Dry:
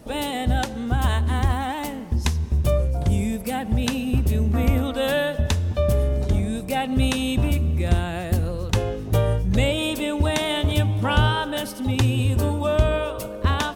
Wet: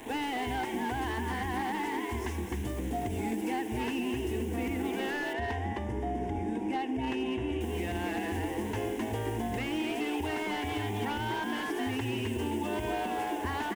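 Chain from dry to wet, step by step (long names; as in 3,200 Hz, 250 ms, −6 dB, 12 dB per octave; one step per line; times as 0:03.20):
linear delta modulator 64 kbit/s, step −36 dBFS
notch filter 2,400 Hz, Q 7.8
echo with shifted repeats 260 ms, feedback 34%, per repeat +120 Hz, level −5.5 dB
brickwall limiter −13.5 dBFS, peak gain reduction 8 dB
high-pass filter 130 Hz 12 dB per octave
bit reduction 7 bits
0:05.33–0:07.61: head-to-tape spacing loss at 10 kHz 20 dB
phaser with its sweep stopped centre 850 Hz, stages 8
dynamic equaliser 2,600 Hz, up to +7 dB, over −45 dBFS, Q 1.1
downward compressor 5 to 1, threshold −29 dBFS, peak gain reduction 7.5 dB
slew-rate limiting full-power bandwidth 36 Hz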